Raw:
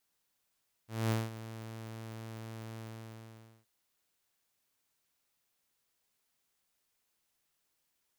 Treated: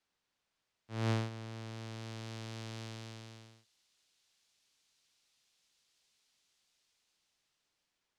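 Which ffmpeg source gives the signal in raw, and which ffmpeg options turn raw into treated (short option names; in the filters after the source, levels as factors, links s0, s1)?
-f lavfi -i "aevalsrc='0.0562*(2*mod(112*t,1)-1)':d=2.773:s=44100,afade=t=in:d=0.221,afade=t=out:st=0.221:d=0.196:silence=0.178,afade=t=out:st=1.91:d=0.863"
-filter_complex "[0:a]lowpass=4900,acrossover=split=110|680|3100[s0][s1][s2][s3];[s3]dynaudnorm=f=760:g=5:m=5.01[s4];[s0][s1][s2][s4]amix=inputs=4:normalize=0"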